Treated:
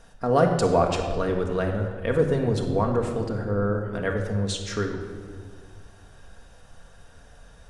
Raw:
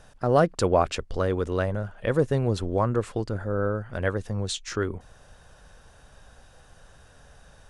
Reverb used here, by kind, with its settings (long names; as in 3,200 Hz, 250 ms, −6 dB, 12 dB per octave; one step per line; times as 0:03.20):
rectangular room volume 2,300 cubic metres, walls mixed, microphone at 1.7 metres
level −1.5 dB